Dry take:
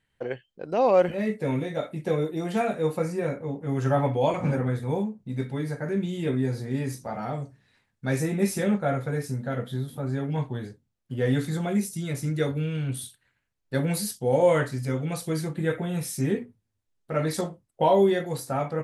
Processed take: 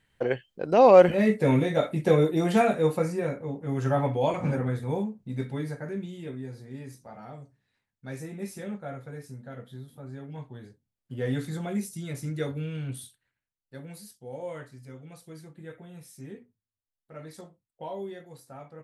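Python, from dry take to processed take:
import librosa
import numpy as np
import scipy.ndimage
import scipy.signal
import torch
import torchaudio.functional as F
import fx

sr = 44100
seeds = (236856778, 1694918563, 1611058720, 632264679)

y = fx.gain(x, sr, db=fx.line((2.48, 5.0), (3.34, -2.0), (5.59, -2.0), (6.36, -12.0), (10.46, -12.0), (11.15, -5.0), (12.92, -5.0), (13.75, -17.0)))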